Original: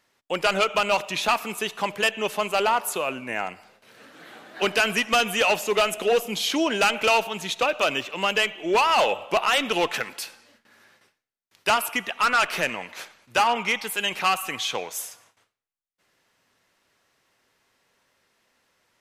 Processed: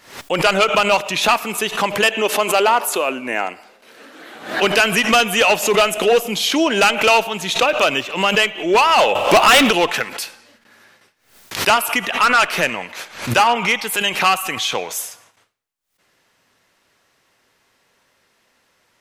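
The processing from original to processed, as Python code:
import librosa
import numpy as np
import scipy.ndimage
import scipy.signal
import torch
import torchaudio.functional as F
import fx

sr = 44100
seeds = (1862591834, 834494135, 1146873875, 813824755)

y = fx.low_shelf_res(x, sr, hz=200.0, db=-9.0, q=1.5, at=(2.08, 4.35))
y = fx.leveller(y, sr, passes=3, at=(9.15, 9.71))
y = fx.pre_swell(y, sr, db_per_s=110.0)
y = F.gain(torch.from_numpy(y), 6.5).numpy()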